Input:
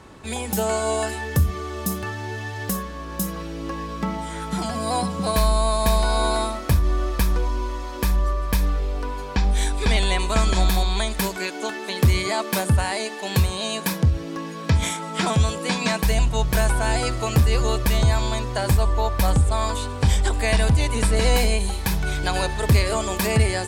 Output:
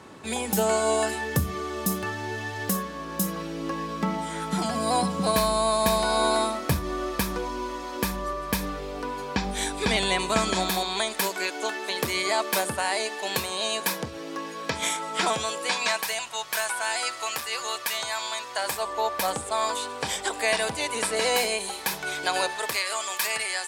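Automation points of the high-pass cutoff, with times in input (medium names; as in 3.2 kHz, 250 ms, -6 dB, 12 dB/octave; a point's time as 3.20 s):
10.21 s 140 Hz
11.22 s 380 Hz
15.24 s 380 Hz
16.28 s 990 Hz
18.43 s 990 Hz
19.02 s 440 Hz
22.43 s 440 Hz
22.85 s 1.1 kHz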